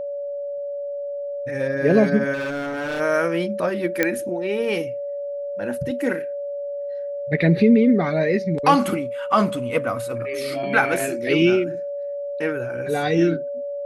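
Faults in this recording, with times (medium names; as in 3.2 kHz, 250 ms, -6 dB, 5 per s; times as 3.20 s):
whine 570 Hz -26 dBFS
2.33–3.01 s: clipped -23.5 dBFS
4.03 s: pop -5 dBFS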